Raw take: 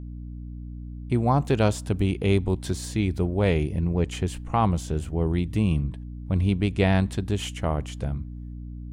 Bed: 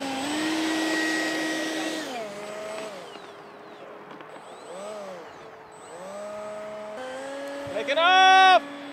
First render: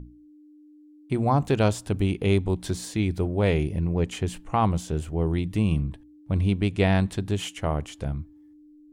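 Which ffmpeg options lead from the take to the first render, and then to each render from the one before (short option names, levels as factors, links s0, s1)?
-af "bandreject=f=60:t=h:w=6,bandreject=f=120:t=h:w=6,bandreject=f=180:t=h:w=6,bandreject=f=240:t=h:w=6"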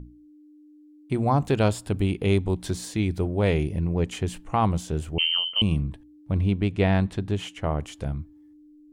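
-filter_complex "[0:a]asettb=1/sr,asplit=3[s0][s1][s2];[s0]atrim=end=1.504[s3];[s1]atrim=start=1.5:end=2.28,asetpts=PTS-STARTPTS,afade=t=in:d=0.004:c=qsin,afade=t=out:st=0.776:d=0.004:c=qsin,bandreject=f=6000:w=7.9[s4];[s2]atrim=start=2.276[s5];[s3][s4]acrossfade=d=0.004:c1=hsin:c2=qsin[s6];[s6][s5]acrossfade=d=0.004:c1=qsin:c2=hsin,asettb=1/sr,asplit=3[s7][s8][s9];[s7]atrim=end=5.184[s10];[s8]atrim=start=5.18:end=5.62,asetpts=PTS-STARTPTS,afade=t=in:d=0.004:c=qsin,afade=t=out:st=0.436:d=0.004:c=qsin,lowpass=f=2700:t=q:w=0.5098,lowpass=f=2700:t=q:w=0.6013,lowpass=f=2700:t=q:w=0.9,lowpass=f=2700:t=q:w=2.563,afreqshift=-3200[s11];[s9]atrim=start=5.616[s12];[s10][s11]acrossfade=d=0.004:c1=hsin:c2=qsin[s13];[s13][s12]acrossfade=d=0.004:c1=qsin:c2=hsin,asettb=1/sr,asplit=3[s14][s15][s16];[s14]atrim=end=6.324[s17];[s15]atrim=start=6.32:end=7.79,asetpts=PTS-STARTPTS,afade=t=in:d=0.004:c=qsin,afade=t=out:st=1.466:d=0.004:c=qsin,lowpass=f=3200:p=1[s18];[s16]atrim=start=7.786[s19];[s17][s18]acrossfade=d=0.004:c1=hsin:c2=qsin[s20];[s20][s19]acrossfade=d=0.004:c1=qsin:c2=hsin"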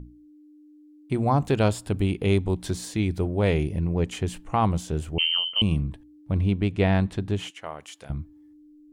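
-filter_complex "[0:a]asettb=1/sr,asplit=3[s0][s1][s2];[s0]atrim=end=7.504[s3];[s1]atrim=start=7.5:end=8.1,asetpts=PTS-STARTPTS,afade=t=in:d=0.004:c=qsin,afade=t=out:st=0.596:d=0.004:c=qsin,highpass=f=1400:p=1[s4];[s2]atrim=start=8.096[s5];[s3][s4]acrossfade=d=0.004:c1=hsin:c2=qsin[s6];[s6][s5]acrossfade=d=0.004:c1=qsin:c2=hsin"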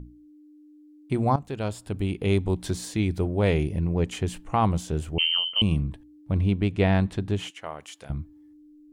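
-filter_complex "[0:a]asplit=2[s0][s1];[s0]atrim=end=1.36,asetpts=PTS-STARTPTS,afade=t=out:st=1.356:d=0.004:c=hsin:silence=0.188365[s2];[s1]atrim=start=1.36,asetpts=PTS-STARTPTS,afade=t=in:d=1.14:silence=0.188365[s3];[s2][s3]concat=n=2:v=0:a=1"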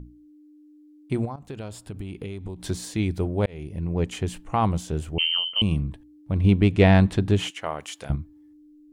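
-filter_complex "[0:a]asettb=1/sr,asplit=3[s0][s1][s2];[s0]atrim=end=1.254[s3];[s1]atrim=start=1.25:end=2.66,asetpts=PTS-STARTPTS,afade=t=in:d=0.004:c=qsin,afade=t=out:st=1.406:d=0.004:c=qsin,acompressor=threshold=0.0355:ratio=16:attack=3.2:release=140:knee=1:detection=peak[s4];[s2]atrim=start=2.656[s5];[s3][s4]acrossfade=d=0.004:c1=hsin:c2=qsin[s6];[s6][s5]acrossfade=d=0.004:c1=qsin:c2=hsin,asettb=1/sr,asplit=3[s7][s8][s9];[s7]atrim=end=6.444[s10];[s8]atrim=start=6.44:end=8.16,asetpts=PTS-STARTPTS,afade=t=in:d=0.004:c=qsin,afade=t=out:st=1.716:d=0.004:c=qsin,acontrast=55[s11];[s9]atrim=start=8.156[s12];[s10][s11]acrossfade=d=0.004:c1=hsin:c2=qsin[s13];[s13][s12]acrossfade=d=0.004:c1=qsin:c2=hsin,asplit=2[s14][s15];[s14]atrim=end=3.46,asetpts=PTS-STARTPTS,afade=t=out:st=3.456:d=0.004:c=hsin[s16];[s15]atrim=start=3.46,asetpts=PTS-STARTPTS,afade=t=in:d=0.53[s17];[s16][s17]concat=n=2:v=0:a=1"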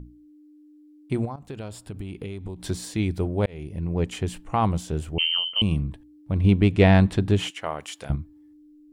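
-af "bandreject=f=6400:w=24"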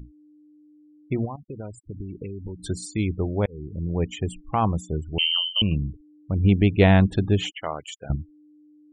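-af "afftfilt=real='re*gte(hypot(re,im),0.02)':imag='im*gte(hypot(re,im),0.02)':win_size=1024:overlap=0.75,highshelf=f=8400:g=10"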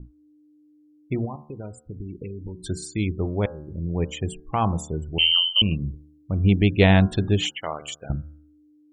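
-af "bandreject=f=74.51:t=h:w=4,bandreject=f=149.02:t=h:w=4,bandreject=f=223.53:t=h:w=4,bandreject=f=298.04:t=h:w=4,bandreject=f=372.55:t=h:w=4,bandreject=f=447.06:t=h:w=4,bandreject=f=521.57:t=h:w=4,bandreject=f=596.08:t=h:w=4,bandreject=f=670.59:t=h:w=4,bandreject=f=745.1:t=h:w=4,bandreject=f=819.61:t=h:w=4,bandreject=f=894.12:t=h:w=4,bandreject=f=968.63:t=h:w=4,bandreject=f=1043.14:t=h:w=4,bandreject=f=1117.65:t=h:w=4,bandreject=f=1192.16:t=h:w=4,bandreject=f=1266.67:t=h:w=4,bandreject=f=1341.18:t=h:w=4,bandreject=f=1415.69:t=h:w=4,bandreject=f=1490.2:t=h:w=4,bandreject=f=1564.71:t=h:w=4,bandreject=f=1639.22:t=h:w=4,adynamicequalizer=threshold=0.0141:dfrequency=2400:dqfactor=0.7:tfrequency=2400:tqfactor=0.7:attack=5:release=100:ratio=0.375:range=3:mode=boostabove:tftype=highshelf"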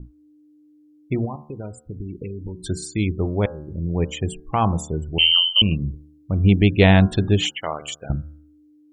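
-af "volume=1.41,alimiter=limit=0.708:level=0:latency=1"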